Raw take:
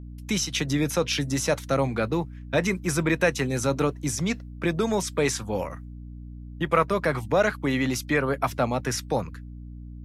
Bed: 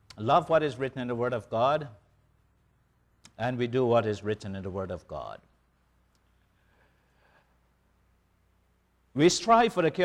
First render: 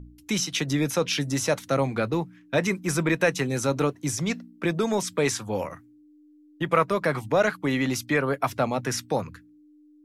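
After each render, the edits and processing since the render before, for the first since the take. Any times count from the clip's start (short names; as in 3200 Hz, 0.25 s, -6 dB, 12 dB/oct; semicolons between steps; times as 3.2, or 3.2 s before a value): de-hum 60 Hz, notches 4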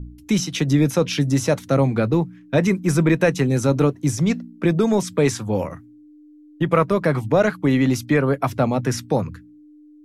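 low shelf 480 Hz +10.5 dB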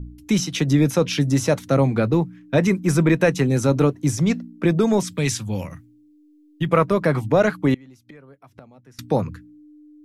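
5.11–6.69 EQ curve 160 Hz 0 dB, 430 Hz -10 dB, 1300 Hz -7 dB, 2700 Hz +3 dB; 7.74–8.99 flipped gate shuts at -20 dBFS, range -28 dB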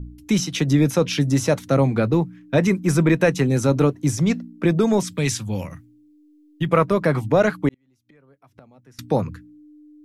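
7.69–9.04 fade in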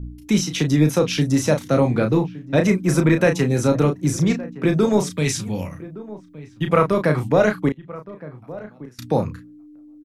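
doubler 33 ms -6.5 dB; outdoor echo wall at 200 m, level -17 dB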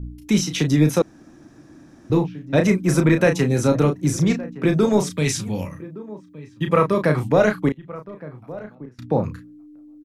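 1.02–2.1 room tone; 5.65–7.03 notch comb 720 Hz; 8.75–9.24 LPF 1200 Hz 6 dB/oct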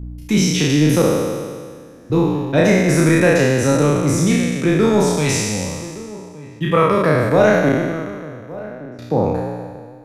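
spectral trails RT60 1.84 s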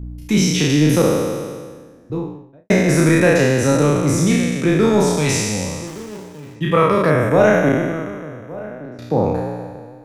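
1.5–2.7 studio fade out; 5.87–6.56 switching dead time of 0.22 ms; 7.1–8.84 Butterworth band-stop 4400 Hz, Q 2.6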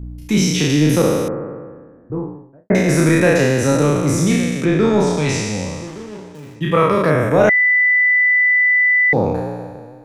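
1.28–2.75 steep low-pass 1800 Hz; 4.65–6.35 air absorption 64 m; 7.49–9.13 bleep 1990 Hz -10.5 dBFS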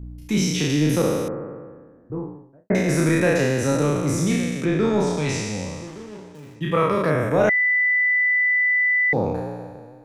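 gain -5.5 dB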